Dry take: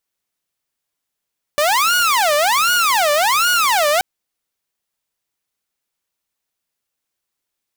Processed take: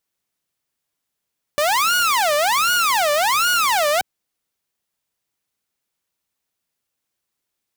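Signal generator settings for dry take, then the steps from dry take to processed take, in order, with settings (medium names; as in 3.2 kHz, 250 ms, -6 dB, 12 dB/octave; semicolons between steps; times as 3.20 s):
siren wail 585–1450 Hz 1.3 per s saw -10.5 dBFS 2.43 s
bass shelf 64 Hz -11.5 dB; peak limiter -12.5 dBFS; bass shelf 200 Hz +8 dB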